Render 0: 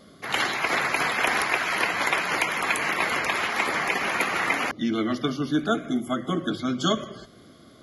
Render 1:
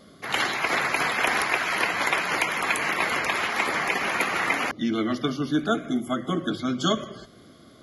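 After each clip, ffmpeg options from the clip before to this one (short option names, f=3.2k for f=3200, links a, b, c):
-af anull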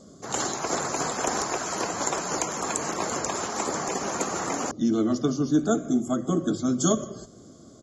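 -af "firequalizer=gain_entry='entry(410,0);entry(1300,-8);entry(2100,-20);entry(7200,12);entry(10000,-15)':delay=0.05:min_phase=1,volume=2.5dB"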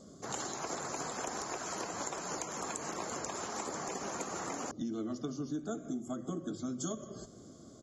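-af "acompressor=threshold=-32dB:ratio=4,volume=-4.5dB"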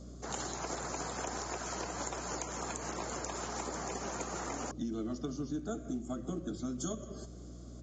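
-af "bandreject=f=1.1k:w=28,aeval=exprs='val(0)+0.00398*(sin(2*PI*60*n/s)+sin(2*PI*2*60*n/s)/2+sin(2*PI*3*60*n/s)/3+sin(2*PI*4*60*n/s)/4+sin(2*PI*5*60*n/s)/5)':c=same" -ar 16000 -c:a pcm_mulaw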